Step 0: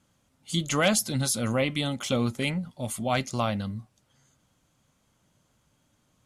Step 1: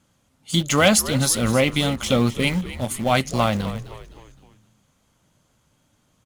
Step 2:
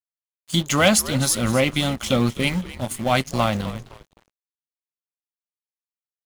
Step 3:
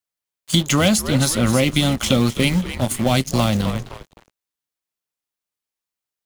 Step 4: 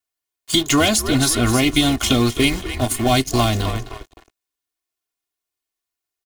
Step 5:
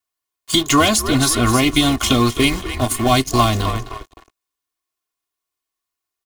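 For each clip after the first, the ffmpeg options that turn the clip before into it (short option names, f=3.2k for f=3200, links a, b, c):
-filter_complex "[0:a]asplit=2[a][b];[b]aeval=exprs='val(0)*gte(abs(val(0)),0.0398)':c=same,volume=-7dB[c];[a][c]amix=inputs=2:normalize=0,asplit=5[d][e][f][g][h];[e]adelay=258,afreqshift=-78,volume=-14dB[i];[f]adelay=516,afreqshift=-156,volume=-21.1dB[j];[g]adelay=774,afreqshift=-234,volume=-28.3dB[k];[h]adelay=1032,afreqshift=-312,volume=-35.4dB[l];[d][i][j][k][l]amix=inputs=5:normalize=0,volume=4dB"
-af "bandreject=f=450:w=12,aeval=exprs='sgn(val(0))*max(abs(val(0))-0.0112,0)':c=same"
-filter_complex "[0:a]acrossover=split=430|3400[a][b][c];[a]acompressor=threshold=-23dB:ratio=4[d];[b]acompressor=threshold=-32dB:ratio=4[e];[c]acompressor=threshold=-30dB:ratio=4[f];[d][e][f]amix=inputs=3:normalize=0,volume=8dB"
-af "aecho=1:1:2.8:0.85"
-af "equalizer=f=1.1k:w=6.2:g=8.5,volume=1dB"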